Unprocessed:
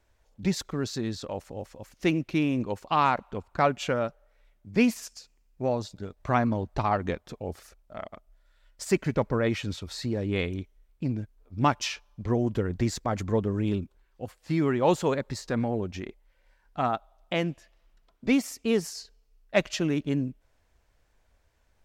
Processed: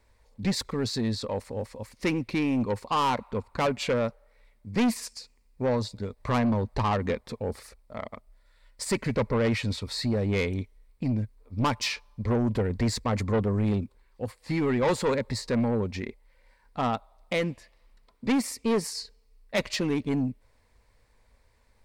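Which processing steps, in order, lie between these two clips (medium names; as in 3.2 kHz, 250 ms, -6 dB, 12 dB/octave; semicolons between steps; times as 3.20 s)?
rippled EQ curve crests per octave 0.94, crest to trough 7 dB; saturation -23.5 dBFS, distortion -9 dB; trim +3.5 dB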